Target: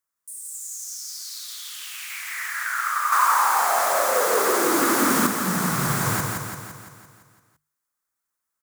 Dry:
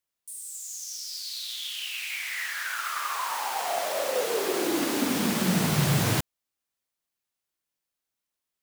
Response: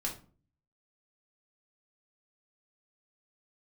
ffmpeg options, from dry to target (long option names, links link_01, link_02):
-filter_complex "[0:a]bandreject=frequency=50:width_type=h:width=6,bandreject=frequency=100:width_type=h:width=6,bandreject=frequency=150:width_type=h:width=6,aecho=1:1:170|340|510|680|850|1020|1190|1360:0.631|0.36|0.205|0.117|0.0666|0.038|0.0216|0.0123,asettb=1/sr,asplit=3[link_01][link_02][link_03];[link_01]atrim=end=3.124[link_04];[link_02]atrim=start=3.12:end=5.27,asetpts=PTS-STARTPTS,afade=type=in:duration=0.004:curve=qsin,afade=type=out:start_time=2.146:duration=0.004:curve=qsin,acontrast=39[link_05];[link_03]atrim=start=5.266[link_06];[link_04][link_05]acrossfade=duration=0.004:curve1=hsin:curve2=qsin[link_07];[link_07][link_06]acrossfade=duration=0.004:curve1=qsin:curve2=hsin,firequalizer=gain_entry='entry(680,0);entry(1200,11);entry(2800,-6);entry(7000,5)':delay=0.05:min_phase=1,volume=-2.5dB"